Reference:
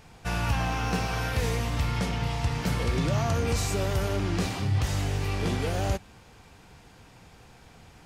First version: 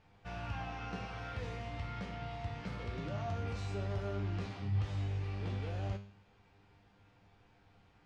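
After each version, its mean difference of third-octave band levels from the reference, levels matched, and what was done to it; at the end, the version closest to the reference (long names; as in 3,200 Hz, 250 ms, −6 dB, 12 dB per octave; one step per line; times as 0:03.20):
6.0 dB: low-pass filter 3,600 Hz 12 dB per octave
tuned comb filter 100 Hz, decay 0.49 s, harmonics all, mix 80%
level −4 dB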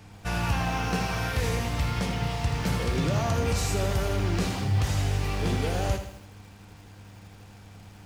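1.5 dB: hum with harmonics 100 Hz, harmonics 3, −50 dBFS −9 dB per octave
feedback echo at a low word length 80 ms, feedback 55%, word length 8 bits, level −9 dB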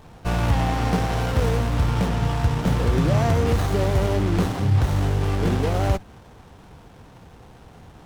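3.0 dB: windowed peak hold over 17 samples
level +7 dB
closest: second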